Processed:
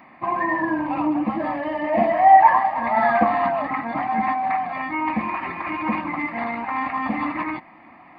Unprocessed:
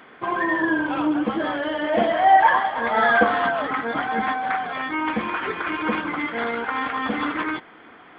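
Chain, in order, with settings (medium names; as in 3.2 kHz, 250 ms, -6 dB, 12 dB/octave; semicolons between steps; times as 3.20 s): peaking EQ 360 Hz +6.5 dB 2.8 oct; static phaser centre 2.2 kHz, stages 8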